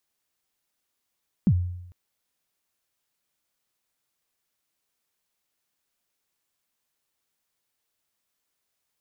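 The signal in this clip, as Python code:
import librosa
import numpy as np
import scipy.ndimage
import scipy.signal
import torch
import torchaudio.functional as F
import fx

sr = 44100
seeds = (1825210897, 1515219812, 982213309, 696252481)

y = fx.drum_kick(sr, seeds[0], length_s=0.45, level_db=-13.5, start_hz=230.0, end_hz=89.0, sweep_ms=60.0, decay_s=0.84, click=False)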